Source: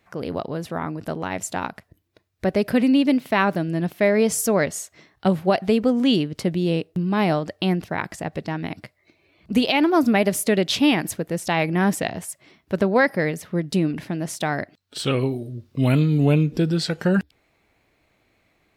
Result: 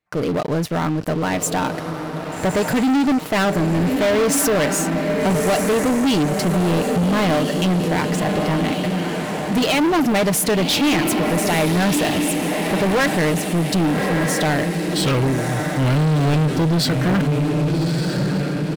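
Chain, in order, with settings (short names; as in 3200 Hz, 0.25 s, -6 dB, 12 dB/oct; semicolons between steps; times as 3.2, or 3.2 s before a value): comb 6.6 ms, depth 36%; diffused feedback echo 1.205 s, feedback 49%, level -8.5 dB; sample leveller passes 5; gain -9 dB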